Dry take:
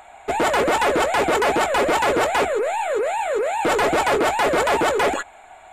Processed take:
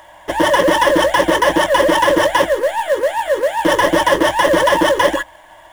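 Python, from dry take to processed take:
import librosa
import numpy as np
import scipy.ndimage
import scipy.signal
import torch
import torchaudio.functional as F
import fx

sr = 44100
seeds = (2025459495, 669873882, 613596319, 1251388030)

p1 = fx.ripple_eq(x, sr, per_octave=1.2, db=17)
p2 = fx.quant_companded(p1, sr, bits=4)
p3 = p1 + (p2 * 10.0 ** (-4.0 / 20.0))
y = p3 * 10.0 ** (-2.0 / 20.0)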